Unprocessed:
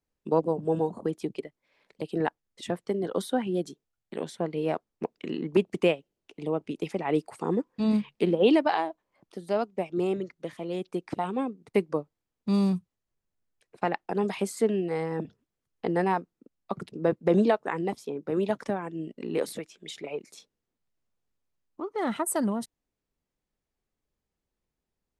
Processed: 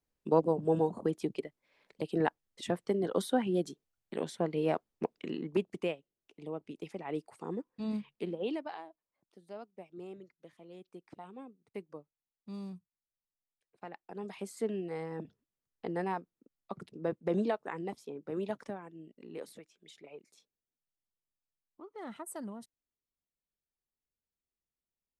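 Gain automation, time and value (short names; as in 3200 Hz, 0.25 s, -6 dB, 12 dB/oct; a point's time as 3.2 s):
5.05 s -2 dB
5.86 s -11 dB
8.1 s -11 dB
8.83 s -18.5 dB
13.87 s -18.5 dB
14.68 s -9 dB
18.55 s -9 dB
19 s -15 dB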